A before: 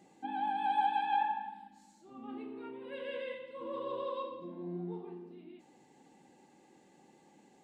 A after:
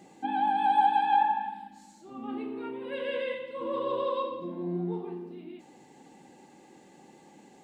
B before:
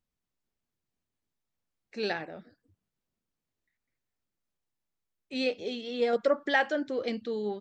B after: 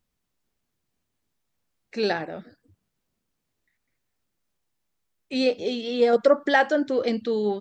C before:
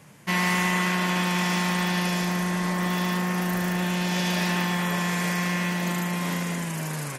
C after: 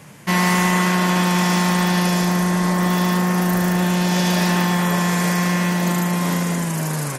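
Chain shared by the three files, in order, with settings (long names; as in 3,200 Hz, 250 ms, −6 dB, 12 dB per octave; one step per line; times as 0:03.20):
dynamic equaliser 2,500 Hz, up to −6 dB, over −44 dBFS, Q 1.1
level +8 dB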